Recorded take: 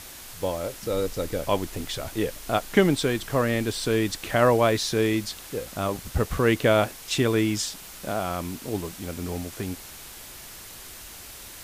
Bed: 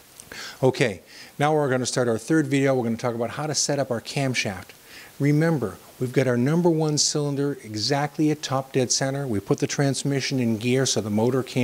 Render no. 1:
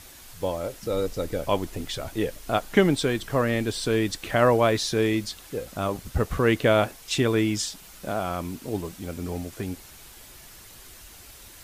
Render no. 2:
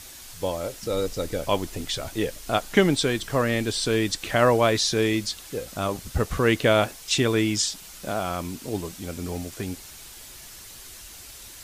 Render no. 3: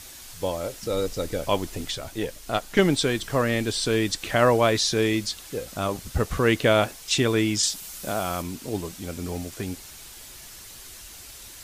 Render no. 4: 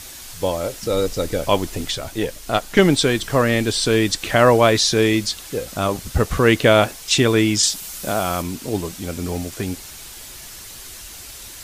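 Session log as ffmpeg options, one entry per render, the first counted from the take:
ffmpeg -i in.wav -af "afftdn=noise_reduction=6:noise_floor=-43" out.wav
ffmpeg -i in.wav -filter_complex "[0:a]acrossover=split=8600[link_01][link_02];[link_02]acompressor=threshold=-55dB:ratio=4:attack=1:release=60[link_03];[link_01][link_03]amix=inputs=2:normalize=0,highshelf=frequency=3700:gain=9" out.wav
ffmpeg -i in.wav -filter_complex "[0:a]asettb=1/sr,asplit=3[link_01][link_02][link_03];[link_01]atrim=end=1.914[link_04];[link_02]atrim=start=1.91:end=2.79,asetpts=PTS-STARTPTS,afade=type=in:duration=0.004:curve=qsin,afade=type=out:start_time=0.876:duration=0.004:curve=qsin,aeval=exprs='(tanh(2.82*val(0)+0.6)-tanh(0.6))/2.82':channel_layout=same[link_05];[link_03]atrim=start=2.786[link_06];[link_04][link_05]acrossfade=duration=0.004:curve1=hsin:curve2=qsin[link_07];[link_07][link_06]acrossfade=duration=0.004:curve1=qsin:curve2=hsin,asettb=1/sr,asplit=3[link_08][link_09][link_10];[link_08]atrim=end=7.634[link_11];[link_09]atrim=start=7.63:end=8.42,asetpts=PTS-STARTPTS,afade=type=in:duration=0.004:curve=qsin,afade=type=out:start_time=0.786:duration=0.004:curve=qsin,highshelf=frequency=6800:gain=8[link_12];[link_10]atrim=start=8.416[link_13];[link_11][link_12]acrossfade=duration=0.004:curve1=hsin:curve2=qsin[link_14];[link_14][link_13]acrossfade=duration=0.004:curve1=qsin:curve2=hsin" out.wav
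ffmpeg -i in.wav -af "volume=6dB,alimiter=limit=-1dB:level=0:latency=1" out.wav

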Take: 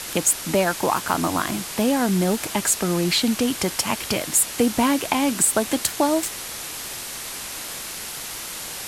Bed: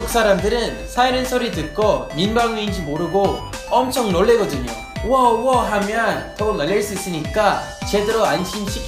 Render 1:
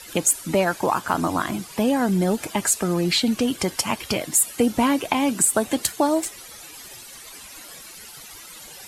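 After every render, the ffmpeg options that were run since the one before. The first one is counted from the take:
ffmpeg -i in.wav -af "afftdn=noise_reduction=14:noise_floor=-33" out.wav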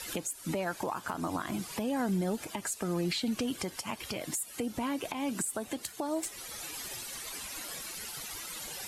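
ffmpeg -i in.wav -af "acompressor=threshold=-26dB:ratio=3,alimiter=limit=-23dB:level=0:latency=1:release=385" out.wav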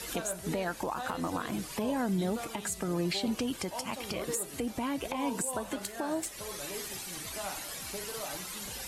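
ffmpeg -i in.wav -i bed.wav -filter_complex "[1:a]volume=-24.5dB[link_01];[0:a][link_01]amix=inputs=2:normalize=0" out.wav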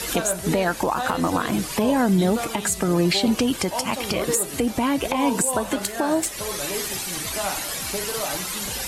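ffmpeg -i in.wav -af "volume=11.5dB" out.wav

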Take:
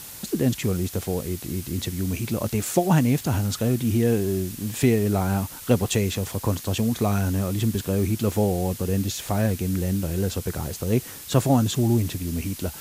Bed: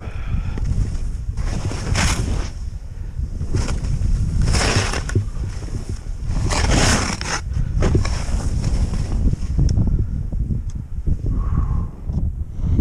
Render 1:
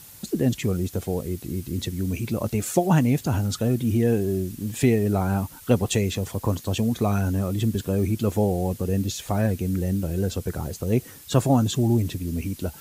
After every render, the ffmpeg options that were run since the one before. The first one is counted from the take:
ffmpeg -i in.wav -af "afftdn=noise_reduction=8:noise_floor=-39" out.wav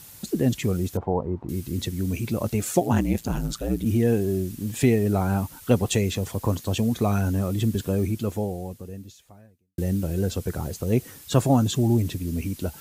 ffmpeg -i in.wav -filter_complex "[0:a]asettb=1/sr,asplit=3[link_01][link_02][link_03];[link_01]atrim=end=0.974[link_04];[link_02]atrim=start=0.97:end=1.49,asetpts=PTS-STARTPTS,afade=type=in:duration=0.004:curve=qsin,afade=type=out:start_time=0.516:duration=0.004:curve=qsin,lowpass=frequency=930:width_type=q:width=5.8[link_05];[link_03]atrim=start=1.486[link_06];[link_04][link_05]acrossfade=duration=0.004:curve1=hsin:curve2=qsin[link_07];[link_07][link_06]acrossfade=duration=0.004:curve1=qsin:curve2=hsin,asplit=3[link_08][link_09][link_10];[link_08]afade=type=out:start_time=2.8:duration=0.02[link_11];[link_09]aeval=exprs='val(0)*sin(2*PI*57*n/s)':channel_layout=same,afade=type=in:start_time=2.8:duration=0.02,afade=type=out:start_time=3.84:duration=0.02[link_12];[link_10]afade=type=in:start_time=3.84:duration=0.02[link_13];[link_11][link_12][link_13]amix=inputs=3:normalize=0,asplit=2[link_14][link_15];[link_14]atrim=end=9.78,asetpts=PTS-STARTPTS,afade=type=out:start_time=7.9:duration=1.88:curve=qua[link_16];[link_15]atrim=start=9.78,asetpts=PTS-STARTPTS,afade=type=in:duration=0.004:curve=hsin[link_17];[link_16][link_17]concat=n=2:v=0:a=1" out.wav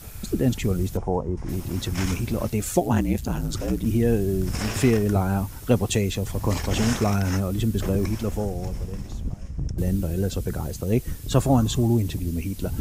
ffmpeg -i in.wav -i bed.wav -filter_complex "[1:a]volume=-12dB[link_01];[0:a][link_01]amix=inputs=2:normalize=0" out.wav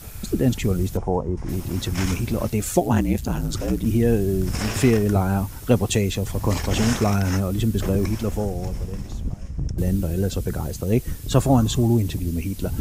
ffmpeg -i in.wav -af "volume=2dB" out.wav

